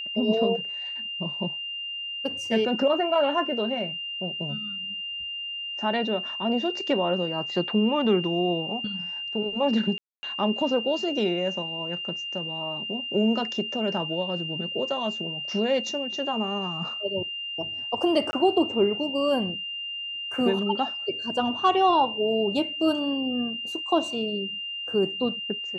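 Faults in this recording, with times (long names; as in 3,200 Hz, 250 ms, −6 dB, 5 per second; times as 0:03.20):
whistle 2,800 Hz −31 dBFS
0:09.98–0:10.23: drop-out 250 ms
0:18.31–0:18.33: drop-out 20 ms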